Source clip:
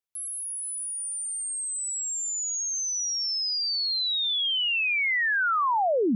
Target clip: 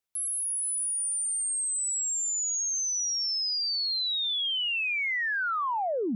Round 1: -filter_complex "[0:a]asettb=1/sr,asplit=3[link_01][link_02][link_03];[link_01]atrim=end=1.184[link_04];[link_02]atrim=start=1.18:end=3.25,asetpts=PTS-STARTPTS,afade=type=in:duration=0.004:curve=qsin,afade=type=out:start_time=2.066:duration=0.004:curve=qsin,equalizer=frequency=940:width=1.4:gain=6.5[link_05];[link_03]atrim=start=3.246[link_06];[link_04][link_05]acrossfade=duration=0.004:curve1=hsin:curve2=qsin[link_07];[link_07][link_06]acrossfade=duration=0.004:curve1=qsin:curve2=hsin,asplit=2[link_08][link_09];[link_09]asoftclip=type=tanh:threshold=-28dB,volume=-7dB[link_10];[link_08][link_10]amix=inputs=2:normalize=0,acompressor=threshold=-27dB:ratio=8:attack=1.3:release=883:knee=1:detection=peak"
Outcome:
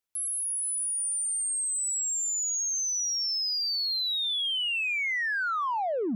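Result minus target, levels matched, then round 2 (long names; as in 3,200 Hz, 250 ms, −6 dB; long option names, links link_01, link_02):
soft clipping: distortion +17 dB
-filter_complex "[0:a]asettb=1/sr,asplit=3[link_01][link_02][link_03];[link_01]atrim=end=1.184[link_04];[link_02]atrim=start=1.18:end=3.25,asetpts=PTS-STARTPTS,afade=type=in:duration=0.004:curve=qsin,afade=type=out:start_time=2.066:duration=0.004:curve=qsin,equalizer=frequency=940:width=1.4:gain=6.5[link_05];[link_03]atrim=start=3.246[link_06];[link_04][link_05]acrossfade=duration=0.004:curve1=hsin:curve2=qsin[link_07];[link_07][link_06]acrossfade=duration=0.004:curve1=qsin:curve2=hsin,asplit=2[link_08][link_09];[link_09]asoftclip=type=tanh:threshold=-16.5dB,volume=-7dB[link_10];[link_08][link_10]amix=inputs=2:normalize=0,acompressor=threshold=-27dB:ratio=8:attack=1.3:release=883:knee=1:detection=peak"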